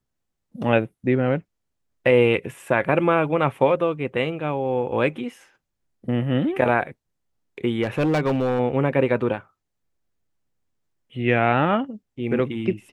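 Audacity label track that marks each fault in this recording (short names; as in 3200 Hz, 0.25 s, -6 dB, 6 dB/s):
7.830000	8.600000	clipped -17 dBFS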